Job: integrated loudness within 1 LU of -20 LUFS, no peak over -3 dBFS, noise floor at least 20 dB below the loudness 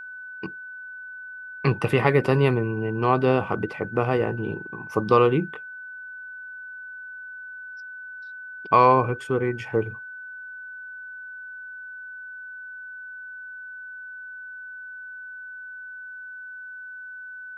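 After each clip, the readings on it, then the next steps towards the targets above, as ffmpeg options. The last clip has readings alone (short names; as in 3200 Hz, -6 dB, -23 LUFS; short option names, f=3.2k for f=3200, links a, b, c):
steady tone 1500 Hz; tone level -36 dBFS; loudness -23.0 LUFS; peak -4.0 dBFS; loudness target -20.0 LUFS
-> -af "bandreject=f=1.5k:w=30"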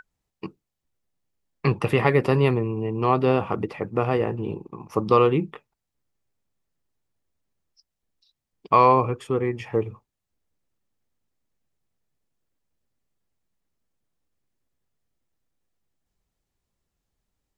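steady tone none; loudness -22.5 LUFS; peak -4.0 dBFS; loudness target -20.0 LUFS
-> -af "volume=2.5dB,alimiter=limit=-3dB:level=0:latency=1"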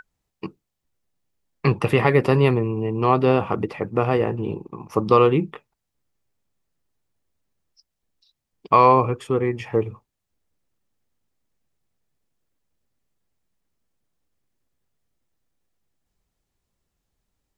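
loudness -20.0 LUFS; peak -3.0 dBFS; noise floor -80 dBFS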